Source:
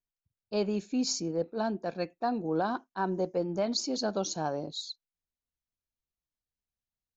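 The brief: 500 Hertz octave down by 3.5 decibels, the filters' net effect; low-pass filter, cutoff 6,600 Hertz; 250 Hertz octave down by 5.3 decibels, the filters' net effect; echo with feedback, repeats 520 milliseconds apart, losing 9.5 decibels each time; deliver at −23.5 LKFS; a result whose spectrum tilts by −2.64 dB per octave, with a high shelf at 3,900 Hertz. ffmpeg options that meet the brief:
ffmpeg -i in.wav -af "lowpass=6600,equalizer=frequency=250:width_type=o:gain=-6,equalizer=frequency=500:width_type=o:gain=-3,highshelf=frequency=3900:gain=8.5,aecho=1:1:520|1040|1560|2080:0.335|0.111|0.0365|0.012,volume=9.5dB" out.wav

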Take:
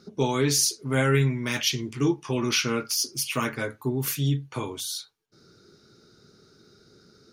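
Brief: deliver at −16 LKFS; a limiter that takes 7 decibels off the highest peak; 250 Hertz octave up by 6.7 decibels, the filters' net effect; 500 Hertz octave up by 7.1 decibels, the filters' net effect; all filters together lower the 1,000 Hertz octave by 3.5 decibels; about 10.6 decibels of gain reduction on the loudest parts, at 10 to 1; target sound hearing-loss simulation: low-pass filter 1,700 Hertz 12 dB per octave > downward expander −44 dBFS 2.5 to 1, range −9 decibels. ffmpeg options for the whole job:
ffmpeg -i in.wav -af "equalizer=frequency=250:width_type=o:gain=6,equalizer=frequency=500:width_type=o:gain=8,equalizer=frequency=1000:width_type=o:gain=-6,acompressor=threshold=-23dB:ratio=10,alimiter=limit=-19.5dB:level=0:latency=1,lowpass=1700,agate=range=-9dB:threshold=-44dB:ratio=2.5,volume=15dB" out.wav

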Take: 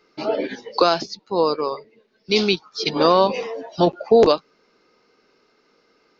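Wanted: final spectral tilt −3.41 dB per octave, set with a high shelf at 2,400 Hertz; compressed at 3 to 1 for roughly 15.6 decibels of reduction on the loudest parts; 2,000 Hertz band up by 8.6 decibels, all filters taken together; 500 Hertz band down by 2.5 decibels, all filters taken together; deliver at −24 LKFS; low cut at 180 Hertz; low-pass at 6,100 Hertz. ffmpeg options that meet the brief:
ffmpeg -i in.wav -af "highpass=180,lowpass=6100,equalizer=frequency=500:width_type=o:gain=-3.5,equalizer=frequency=2000:width_type=o:gain=7.5,highshelf=frequency=2400:gain=7,acompressor=threshold=-33dB:ratio=3,volume=9dB" out.wav

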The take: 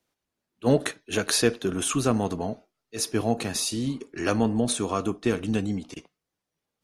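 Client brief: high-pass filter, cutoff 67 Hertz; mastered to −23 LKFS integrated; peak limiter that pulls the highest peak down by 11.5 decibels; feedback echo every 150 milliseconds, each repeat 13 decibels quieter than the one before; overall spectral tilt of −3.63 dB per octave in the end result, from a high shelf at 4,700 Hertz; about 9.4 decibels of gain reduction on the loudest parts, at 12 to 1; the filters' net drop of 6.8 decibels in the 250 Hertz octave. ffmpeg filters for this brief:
ffmpeg -i in.wav -af "highpass=67,equalizer=frequency=250:width_type=o:gain=-8.5,highshelf=frequency=4700:gain=4,acompressor=threshold=-27dB:ratio=12,alimiter=limit=-22.5dB:level=0:latency=1,aecho=1:1:150|300|450:0.224|0.0493|0.0108,volume=11.5dB" out.wav

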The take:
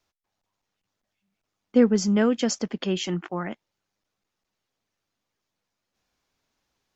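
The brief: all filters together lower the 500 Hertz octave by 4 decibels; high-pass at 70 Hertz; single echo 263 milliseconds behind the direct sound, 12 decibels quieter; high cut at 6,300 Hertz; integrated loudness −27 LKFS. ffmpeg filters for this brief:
ffmpeg -i in.wav -af "highpass=70,lowpass=6300,equalizer=frequency=500:width_type=o:gain=-4.5,aecho=1:1:263:0.251,volume=-1.5dB" out.wav

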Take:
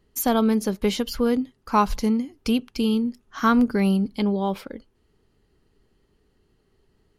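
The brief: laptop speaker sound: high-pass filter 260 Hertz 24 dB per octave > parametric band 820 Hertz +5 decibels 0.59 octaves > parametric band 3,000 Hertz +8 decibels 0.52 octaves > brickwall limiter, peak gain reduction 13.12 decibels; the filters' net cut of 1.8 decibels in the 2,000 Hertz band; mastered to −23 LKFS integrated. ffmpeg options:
ffmpeg -i in.wav -af "highpass=frequency=260:width=0.5412,highpass=frequency=260:width=1.3066,equalizer=frequency=820:width_type=o:width=0.59:gain=5,equalizer=frequency=2000:width_type=o:gain=-5.5,equalizer=frequency=3000:width_type=o:width=0.52:gain=8,volume=6dB,alimiter=limit=-12.5dB:level=0:latency=1" out.wav

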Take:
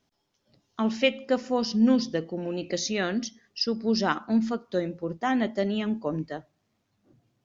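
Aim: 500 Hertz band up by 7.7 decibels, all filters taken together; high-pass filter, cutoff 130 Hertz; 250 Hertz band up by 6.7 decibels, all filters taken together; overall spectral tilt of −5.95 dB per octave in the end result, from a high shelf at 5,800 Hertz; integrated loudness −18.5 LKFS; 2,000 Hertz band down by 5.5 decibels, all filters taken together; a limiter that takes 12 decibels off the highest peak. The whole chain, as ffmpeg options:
ffmpeg -i in.wav -af "highpass=130,equalizer=frequency=250:width_type=o:gain=6.5,equalizer=frequency=500:width_type=o:gain=7.5,equalizer=frequency=2000:width_type=o:gain=-7.5,highshelf=frequency=5800:gain=-3,volume=7.5dB,alimiter=limit=-8.5dB:level=0:latency=1" out.wav

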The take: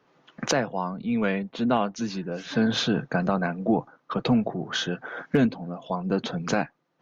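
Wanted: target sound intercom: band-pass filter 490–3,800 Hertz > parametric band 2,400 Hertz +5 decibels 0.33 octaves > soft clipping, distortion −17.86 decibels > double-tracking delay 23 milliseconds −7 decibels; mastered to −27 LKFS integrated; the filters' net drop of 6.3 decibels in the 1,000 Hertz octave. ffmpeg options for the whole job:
ffmpeg -i in.wav -filter_complex "[0:a]highpass=490,lowpass=3800,equalizer=frequency=1000:width_type=o:gain=-8.5,equalizer=frequency=2400:width_type=o:width=0.33:gain=5,asoftclip=threshold=-21.5dB,asplit=2[link_01][link_02];[link_02]adelay=23,volume=-7dB[link_03];[link_01][link_03]amix=inputs=2:normalize=0,volume=7dB" out.wav

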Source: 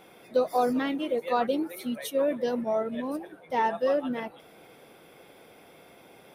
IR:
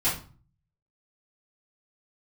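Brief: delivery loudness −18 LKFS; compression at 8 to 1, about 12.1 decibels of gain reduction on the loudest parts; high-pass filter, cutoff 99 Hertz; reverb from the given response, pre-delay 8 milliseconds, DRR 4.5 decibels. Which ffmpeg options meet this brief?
-filter_complex "[0:a]highpass=99,acompressor=threshold=-32dB:ratio=8,asplit=2[link_01][link_02];[1:a]atrim=start_sample=2205,adelay=8[link_03];[link_02][link_03]afir=irnorm=-1:irlink=0,volume=-15.5dB[link_04];[link_01][link_04]amix=inputs=2:normalize=0,volume=17dB"

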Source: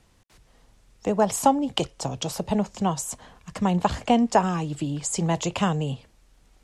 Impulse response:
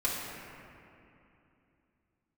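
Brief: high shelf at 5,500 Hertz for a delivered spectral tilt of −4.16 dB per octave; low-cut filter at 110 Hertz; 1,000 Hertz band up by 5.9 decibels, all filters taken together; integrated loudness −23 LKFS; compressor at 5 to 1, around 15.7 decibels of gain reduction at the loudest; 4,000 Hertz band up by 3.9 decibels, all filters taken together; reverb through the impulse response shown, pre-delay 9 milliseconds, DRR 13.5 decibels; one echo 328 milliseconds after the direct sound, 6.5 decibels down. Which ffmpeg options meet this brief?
-filter_complex "[0:a]highpass=110,equalizer=frequency=1000:width_type=o:gain=7.5,equalizer=frequency=4000:width_type=o:gain=6.5,highshelf=frequency=5500:gain=-3.5,acompressor=threshold=-27dB:ratio=5,aecho=1:1:328:0.473,asplit=2[link_01][link_02];[1:a]atrim=start_sample=2205,adelay=9[link_03];[link_02][link_03]afir=irnorm=-1:irlink=0,volume=-21.5dB[link_04];[link_01][link_04]amix=inputs=2:normalize=0,volume=8dB"

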